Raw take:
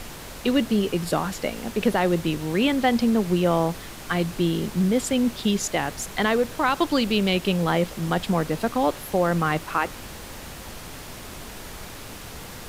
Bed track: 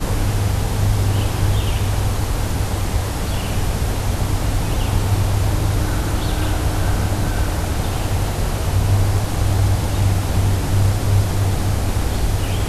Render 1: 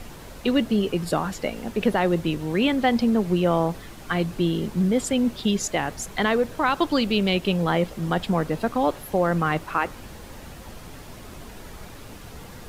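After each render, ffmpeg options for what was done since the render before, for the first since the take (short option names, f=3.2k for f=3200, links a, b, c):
-af "afftdn=nr=7:nf=-39"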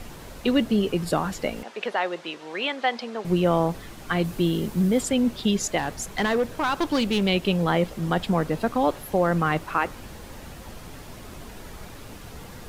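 -filter_complex "[0:a]asettb=1/sr,asplit=3[a][b][c];[a]atrim=end=1.634[d];[b]atrim=start=1.63:end=3.25,asetpts=PTS-STARTPTS,afade=t=in:d=0.004:c=qsin,afade=t=out:st=1.616:d=0.004:c=qsin,highpass=630,lowpass=5.7k[e];[c]atrim=start=3.246[f];[d][e]acrossfade=d=0.004:c1=hsin:c2=qsin[g];[g][f]acrossfade=d=0.004:c1=qsin:c2=hsin,asettb=1/sr,asplit=3[h][i][j];[h]atrim=end=4.244[k];[i]atrim=start=4.24:end=5.03,asetpts=PTS-STARTPTS,afade=t=in:d=0.004:c=qsin,afade=t=out:st=0.786:d=0.004:c=qsin,highshelf=f=11k:g=10.5[l];[j]atrim=start=5.026[m];[k][l]acrossfade=d=0.004:c1=hsin:c2=qsin[n];[n][m]acrossfade=d=0.004:c1=qsin:c2=hsin,asettb=1/sr,asplit=3[o][p][q];[o]atrim=end=5.784[r];[p]atrim=start=5.78:end=7.22,asetpts=PTS-STARTPTS,afade=t=in:d=0.004:c=qsin,afade=t=out:st=1.436:d=0.004:c=qsin,asoftclip=type=hard:threshold=-18dB[s];[q]atrim=start=7.216[t];[r][s]acrossfade=d=0.004:c1=hsin:c2=qsin[u];[u][t]acrossfade=d=0.004:c1=qsin:c2=hsin"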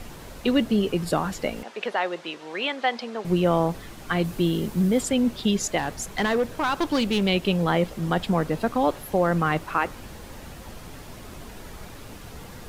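-af anull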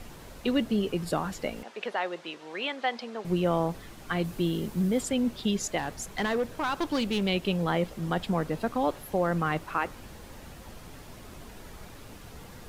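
-af "volume=-5dB"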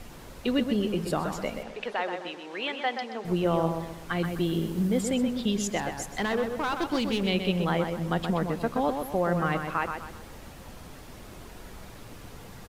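-filter_complex "[0:a]asplit=2[a][b];[b]adelay=127,lowpass=f=3.3k:p=1,volume=-6dB,asplit=2[c][d];[d]adelay=127,lowpass=f=3.3k:p=1,volume=0.4,asplit=2[e][f];[f]adelay=127,lowpass=f=3.3k:p=1,volume=0.4,asplit=2[g][h];[h]adelay=127,lowpass=f=3.3k:p=1,volume=0.4,asplit=2[i][j];[j]adelay=127,lowpass=f=3.3k:p=1,volume=0.4[k];[a][c][e][g][i][k]amix=inputs=6:normalize=0"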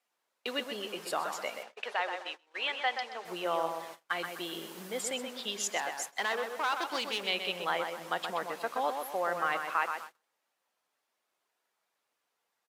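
-af "agate=range=-31dB:threshold=-37dB:ratio=16:detection=peak,highpass=720"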